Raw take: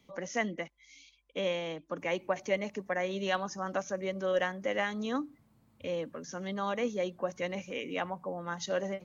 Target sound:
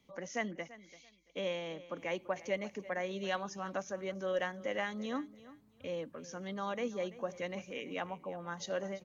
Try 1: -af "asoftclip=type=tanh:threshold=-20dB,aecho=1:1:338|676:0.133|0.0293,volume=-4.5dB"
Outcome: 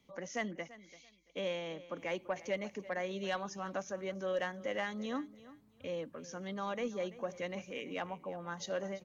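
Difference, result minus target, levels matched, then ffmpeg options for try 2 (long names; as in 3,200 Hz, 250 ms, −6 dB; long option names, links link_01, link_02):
soft clipping: distortion +16 dB
-af "asoftclip=type=tanh:threshold=-11dB,aecho=1:1:338|676:0.133|0.0293,volume=-4.5dB"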